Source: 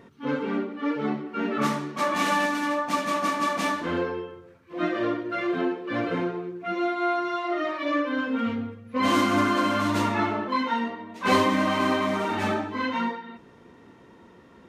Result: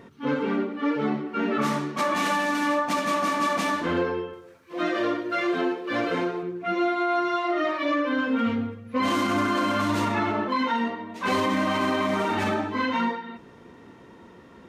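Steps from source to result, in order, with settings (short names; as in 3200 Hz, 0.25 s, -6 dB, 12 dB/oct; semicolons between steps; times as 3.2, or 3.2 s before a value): 4.33–6.43 tone controls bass -8 dB, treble +7 dB; limiter -19 dBFS, peak gain reduction 8 dB; gain +3 dB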